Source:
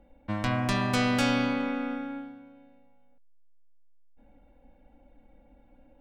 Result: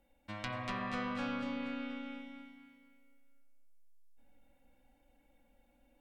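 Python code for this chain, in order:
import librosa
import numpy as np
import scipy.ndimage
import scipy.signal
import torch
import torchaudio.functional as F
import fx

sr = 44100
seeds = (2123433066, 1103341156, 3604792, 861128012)

y = fx.env_lowpass_down(x, sr, base_hz=1300.0, full_db=-22.5)
y = F.preemphasis(torch.from_numpy(y), 0.9).numpy()
y = fx.echo_feedback(y, sr, ms=238, feedback_pct=38, wet_db=-4.5)
y = fx.rev_spring(y, sr, rt60_s=1.3, pass_ms=(46,), chirp_ms=20, drr_db=7.5)
y = y * librosa.db_to_amplitude(5.0)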